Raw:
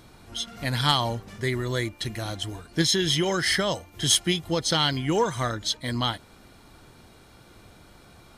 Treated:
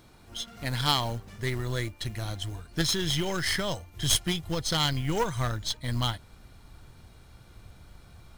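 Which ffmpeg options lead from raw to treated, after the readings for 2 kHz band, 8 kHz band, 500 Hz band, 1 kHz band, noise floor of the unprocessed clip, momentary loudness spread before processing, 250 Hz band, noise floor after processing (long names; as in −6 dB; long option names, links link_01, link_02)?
−4.5 dB, −4.0 dB, −6.0 dB, −4.5 dB, −53 dBFS, 11 LU, −5.0 dB, −54 dBFS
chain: -af "aeval=exprs='0.335*(cos(1*acos(clip(val(0)/0.335,-1,1)))-cos(1*PI/2))+0.106*(cos(2*acos(clip(val(0)/0.335,-1,1)))-cos(2*PI/2))+0.00944*(cos(3*acos(clip(val(0)/0.335,-1,1)))-cos(3*PI/2))+0.0188*(cos(6*acos(clip(val(0)/0.335,-1,1)))-cos(6*PI/2))+0.0335*(cos(8*acos(clip(val(0)/0.335,-1,1)))-cos(8*PI/2))':channel_layout=same,acrusher=bits=5:mode=log:mix=0:aa=0.000001,asubboost=boost=3.5:cutoff=140,volume=-4dB"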